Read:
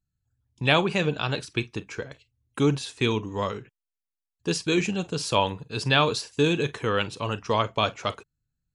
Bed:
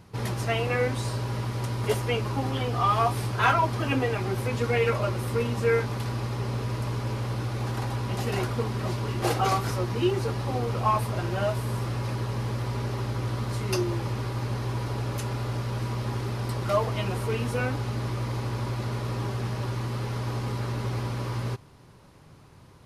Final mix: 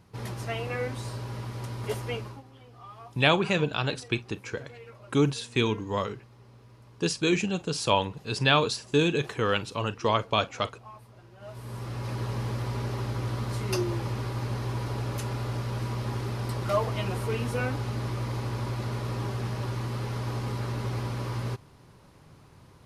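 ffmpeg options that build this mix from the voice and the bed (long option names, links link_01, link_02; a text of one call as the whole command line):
ffmpeg -i stem1.wav -i stem2.wav -filter_complex "[0:a]adelay=2550,volume=-1dB[link_01];[1:a]volume=16dB,afade=type=out:start_time=2.14:duration=0.29:silence=0.133352,afade=type=in:start_time=11.39:duration=0.87:silence=0.0794328[link_02];[link_01][link_02]amix=inputs=2:normalize=0" out.wav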